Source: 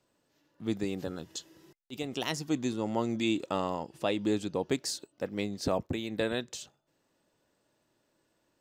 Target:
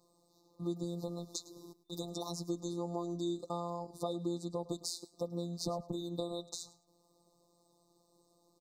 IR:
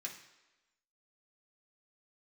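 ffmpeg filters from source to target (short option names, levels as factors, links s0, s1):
-af "afftfilt=real='hypot(re,im)*cos(PI*b)':imag='0':win_size=1024:overlap=0.75,acompressor=threshold=0.00631:ratio=3,aecho=1:1:106|212:0.119|0.0238,afftfilt=real='re*(1-between(b*sr/4096,1300,3600))':imag='im*(1-between(b*sr/4096,1300,3600))':win_size=4096:overlap=0.75,volume=2.37"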